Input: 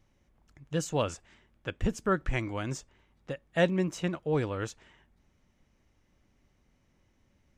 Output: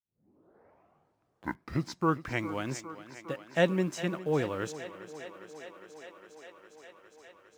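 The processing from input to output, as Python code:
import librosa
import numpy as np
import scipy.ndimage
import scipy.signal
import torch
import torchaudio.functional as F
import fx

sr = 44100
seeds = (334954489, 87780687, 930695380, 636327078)

p1 = fx.tape_start_head(x, sr, length_s=2.48)
p2 = scipy.signal.sosfilt(scipy.signal.butter(2, 140.0, 'highpass', fs=sr, output='sos'), p1)
p3 = fx.quant_dither(p2, sr, seeds[0], bits=8, dither='none')
p4 = p2 + (p3 * 10.0 ** (-10.5 / 20.0))
p5 = fx.echo_thinned(p4, sr, ms=407, feedback_pct=83, hz=200.0, wet_db=-14.0)
y = p5 * 10.0 ** (-2.0 / 20.0)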